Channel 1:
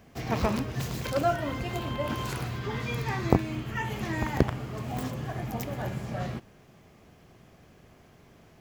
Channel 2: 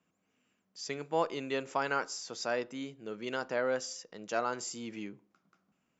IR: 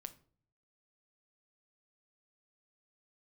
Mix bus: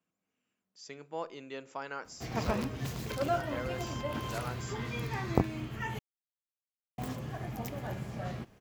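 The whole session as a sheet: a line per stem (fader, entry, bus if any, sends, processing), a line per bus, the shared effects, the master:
−5.0 dB, 2.05 s, muted 0:05.99–0:06.98, no send, no processing
−10.5 dB, 0.00 s, send −5.5 dB, no processing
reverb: on, RT60 0.50 s, pre-delay 6 ms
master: no processing

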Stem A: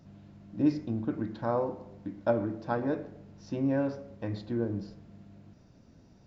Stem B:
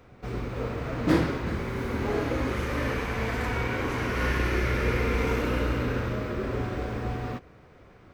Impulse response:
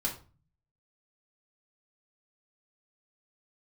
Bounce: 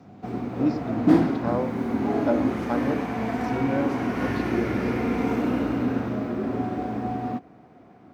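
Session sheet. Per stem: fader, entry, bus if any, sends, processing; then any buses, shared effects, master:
+1.5 dB, 0.00 s, no send, no processing
−6.0 dB, 0.00 s, no send, hollow resonant body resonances 250/710 Hz, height 15 dB, ringing for 20 ms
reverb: not used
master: high-pass filter 96 Hz 12 dB per octave

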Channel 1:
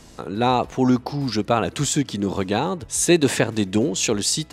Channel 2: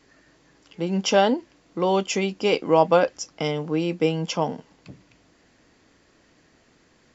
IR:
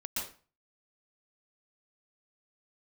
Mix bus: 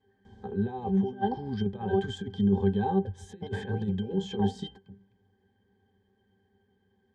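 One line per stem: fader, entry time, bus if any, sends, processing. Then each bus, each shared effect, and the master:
+3.0 dB, 0.25 s, no send, no processing
−1.5 dB, 0.00 s, muted 0:01.99–0:03.05, no send, no processing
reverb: not used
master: compressor whose output falls as the input rises −19 dBFS, ratio −0.5; resonances in every octave G, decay 0.13 s

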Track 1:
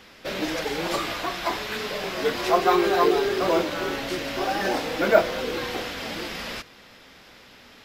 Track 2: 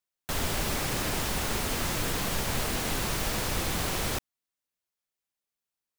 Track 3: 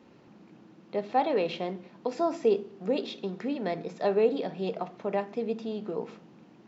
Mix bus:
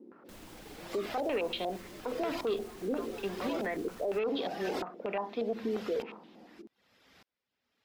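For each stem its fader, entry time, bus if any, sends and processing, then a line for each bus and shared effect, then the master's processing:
−7.5 dB, 0.00 s, no send, high-pass filter 52 Hz; reverb reduction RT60 0.56 s; tremolo with a ramp in dB swelling 0.83 Hz, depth 37 dB
−10.0 dB, 0.00 s, no send, brickwall limiter −23 dBFS, peak gain reduction 6.5 dB; automatic ducking −10 dB, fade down 0.25 s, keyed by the third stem
−1.5 dB, 0.00 s, no send, Chebyshev high-pass filter 220 Hz, order 3; soft clipping −21 dBFS, distortion −15 dB; low-pass on a step sequencer 8.5 Hz 370–3,700 Hz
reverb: not used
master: brickwall limiter −25 dBFS, peak gain reduction 10 dB

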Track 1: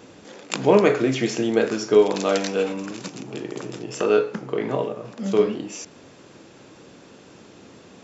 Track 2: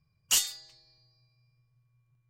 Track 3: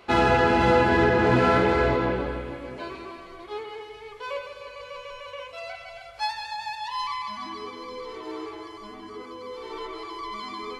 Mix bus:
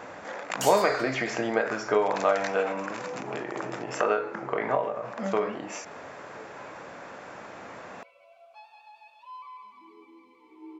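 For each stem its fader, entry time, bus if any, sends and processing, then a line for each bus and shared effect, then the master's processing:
−3.0 dB, 0.00 s, no send, flat-topped bell 1,100 Hz +14 dB 2.3 octaves; downward compressor 1.5 to 1, threshold −31 dBFS, peak gain reduction 10.5 dB; every ending faded ahead of time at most 100 dB per second
−3.5 dB, 0.30 s, no send, downward compressor, threshold −33 dBFS, peak gain reduction 12 dB; automatic gain control gain up to 16 dB
−5.0 dB, 2.35 s, no send, downward compressor, threshold −26 dBFS, peak gain reduction 11 dB; bit-depth reduction 8 bits, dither triangular; formant filter swept between two vowels a-u 0.31 Hz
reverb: not used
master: no processing

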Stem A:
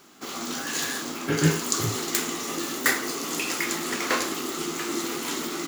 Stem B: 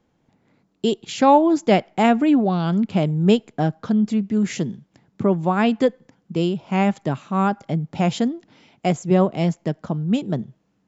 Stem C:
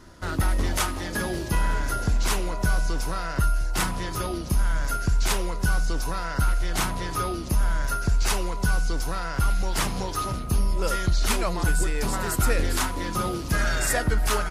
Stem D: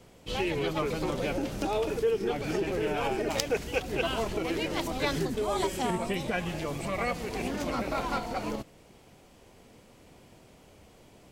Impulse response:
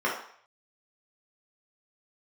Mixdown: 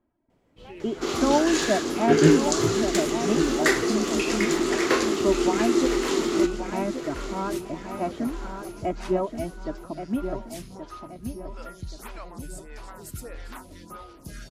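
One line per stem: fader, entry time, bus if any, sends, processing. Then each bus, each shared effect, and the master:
−0.5 dB, 0.80 s, no send, echo send −12 dB, low-pass filter 7,400 Hz 12 dB per octave; parametric band 380 Hz +12.5 dB 0.55 octaves; speech leveller within 5 dB 2 s
−8.0 dB, 0.00 s, no send, echo send −8.5 dB, reverb reduction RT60 1.6 s; low-pass filter 1,600 Hz 12 dB per octave; comb filter 3.1 ms, depth 76%
−12.0 dB, 0.75 s, no send, no echo send, phaser with staggered stages 1.6 Hz
−12.0 dB, 0.30 s, no send, no echo send, high-shelf EQ 2,900 Hz −10 dB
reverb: not used
echo: repeating echo 1,127 ms, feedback 40%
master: no processing

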